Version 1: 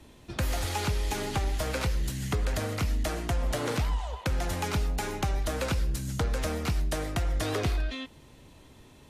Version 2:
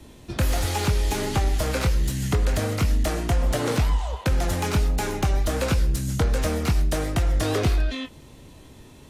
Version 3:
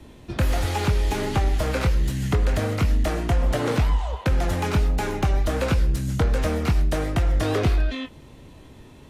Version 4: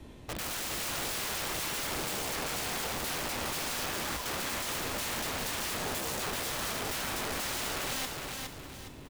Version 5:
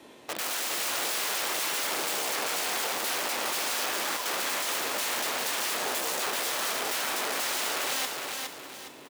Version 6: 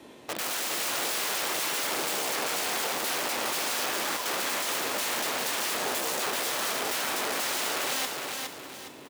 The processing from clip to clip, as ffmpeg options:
-filter_complex "[0:a]acrossover=split=640|4100[s0][s1][s2];[s1]flanger=delay=19:depth=6.7:speed=1.4[s3];[s2]asoftclip=type=tanh:threshold=0.02[s4];[s0][s3][s4]amix=inputs=3:normalize=0,volume=2.24"
-af "bass=f=250:g=0,treble=f=4000:g=-7,volume=1.12"
-af "aeval=exprs='(mod(25.1*val(0)+1,2)-1)/25.1':c=same,aecho=1:1:413|826|1239|1652|2065:0.631|0.227|0.0818|0.0294|0.0106,volume=0.668"
-af "highpass=390,volume=1.78"
-af "lowshelf=f=320:g=5.5"

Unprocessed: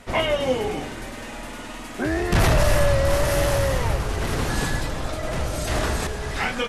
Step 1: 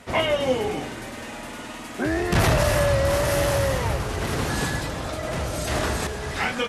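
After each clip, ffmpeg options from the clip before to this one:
-af "highpass=63"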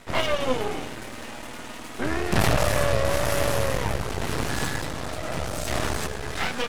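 -af "aeval=exprs='max(val(0),0)':c=same,volume=1.26"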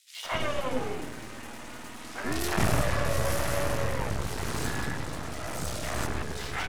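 -filter_complex "[0:a]acrossover=split=570|3200[s0][s1][s2];[s1]adelay=160[s3];[s0]adelay=250[s4];[s4][s3][s2]amix=inputs=3:normalize=0,volume=0.668"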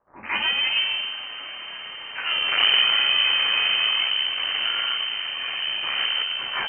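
-af "lowpass=f=2600:t=q:w=0.5098,lowpass=f=2600:t=q:w=0.6013,lowpass=f=2600:t=q:w=0.9,lowpass=f=2600:t=q:w=2.563,afreqshift=-3100,volume=1.88"

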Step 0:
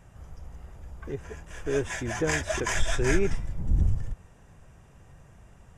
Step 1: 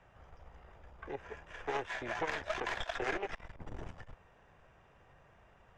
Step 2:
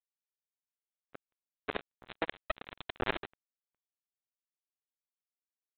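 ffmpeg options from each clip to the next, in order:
-filter_complex "[0:a]aeval=exprs='0.316*(cos(1*acos(clip(val(0)/0.316,-1,1)))-cos(1*PI/2))+0.158*(cos(4*acos(clip(val(0)/0.316,-1,1)))-cos(4*PI/2))':c=same,acrossover=split=390 4200:gain=0.251 1 0.0631[s0][s1][s2];[s0][s1][s2]amix=inputs=3:normalize=0,acrossover=split=450|1200[s3][s4][s5];[s3]acompressor=threshold=0.00891:ratio=4[s6];[s4]acompressor=threshold=0.0158:ratio=4[s7];[s5]acompressor=threshold=0.0126:ratio=4[s8];[s6][s7][s8]amix=inputs=3:normalize=0,volume=0.794"
-af "equalizer=f=240:w=0.75:g=8.5,aresample=8000,acrusher=bits=3:mix=0:aa=0.5,aresample=44100,volume=1.58"

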